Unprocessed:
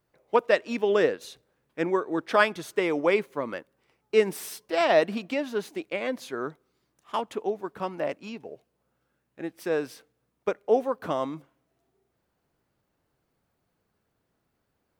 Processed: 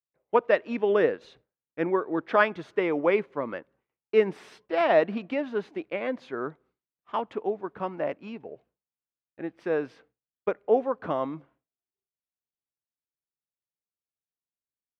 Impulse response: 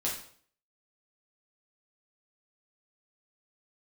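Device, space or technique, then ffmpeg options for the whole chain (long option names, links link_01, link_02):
hearing-loss simulation: -af "lowpass=2400,agate=range=-33dB:threshold=-55dB:ratio=3:detection=peak"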